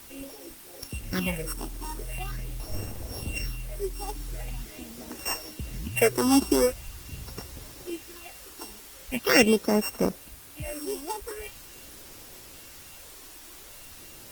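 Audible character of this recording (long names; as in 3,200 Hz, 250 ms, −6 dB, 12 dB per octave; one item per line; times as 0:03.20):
a buzz of ramps at a fixed pitch in blocks of 16 samples
phaser sweep stages 6, 0.43 Hz, lowest notch 140–3,700 Hz
a quantiser's noise floor 8 bits, dither triangular
Opus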